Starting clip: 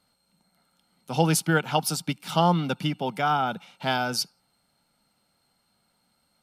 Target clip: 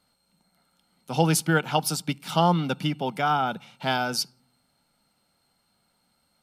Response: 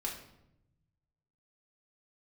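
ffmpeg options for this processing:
-filter_complex "[0:a]asplit=2[link_01][link_02];[1:a]atrim=start_sample=2205,asetrate=70560,aresample=44100,lowshelf=frequency=210:gain=12[link_03];[link_02][link_03]afir=irnorm=-1:irlink=0,volume=-23dB[link_04];[link_01][link_04]amix=inputs=2:normalize=0"

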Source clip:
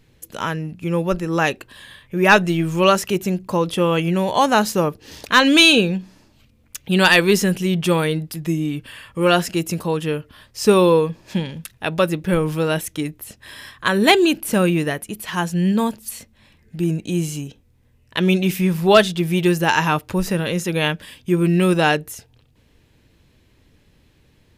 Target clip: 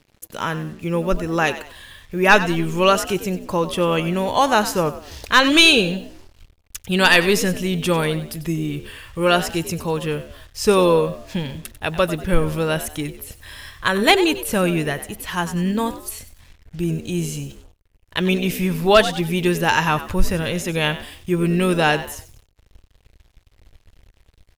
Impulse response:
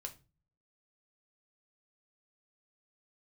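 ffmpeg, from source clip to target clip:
-filter_complex "[0:a]asplit=4[link_01][link_02][link_03][link_04];[link_02]adelay=95,afreqshift=64,volume=-14dB[link_05];[link_03]adelay=190,afreqshift=128,volume=-23.4dB[link_06];[link_04]adelay=285,afreqshift=192,volume=-32.7dB[link_07];[link_01][link_05][link_06][link_07]amix=inputs=4:normalize=0,acrusher=bits=7:mix=0:aa=0.5,asubboost=boost=7.5:cutoff=71"

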